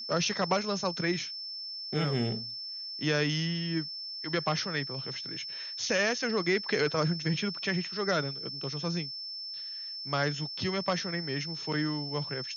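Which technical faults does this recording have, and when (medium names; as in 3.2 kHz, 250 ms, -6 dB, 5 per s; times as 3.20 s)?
whine 5.3 kHz -37 dBFS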